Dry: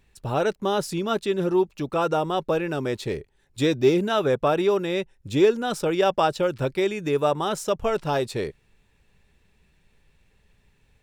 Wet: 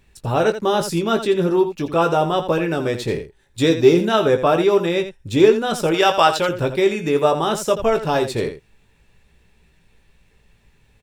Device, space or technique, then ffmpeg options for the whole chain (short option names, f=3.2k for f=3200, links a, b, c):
slapback doubling: -filter_complex "[0:a]asplit=3[a][b][c];[b]adelay=18,volume=-7dB[d];[c]adelay=84,volume=-10.5dB[e];[a][d][e]amix=inputs=3:normalize=0,asettb=1/sr,asplit=3[f][g][h];[f]atrim=end=5.944[i];[g]atrim=start=5.94:end=6.49,asetpts=PTS-STARTPTS,afade=t=in:d=0.004:c=qsin,afade=t=out:st=0.546:d=0.004:c=qsin,tiltshelf=f=660:g=-6[j];[h]atrim=start=6.486[k];[i][j]acrossfade=d=0.004:c1=hsin:c2=qsin[l];[l][k]acrossfade=d=0.004:c1=qsin:c2=hsin,volume=4.5dB"